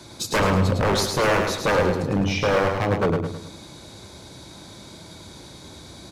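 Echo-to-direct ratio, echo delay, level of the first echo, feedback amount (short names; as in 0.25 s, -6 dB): -4.0 dB, 0.106 s, -5.0 dB, 42%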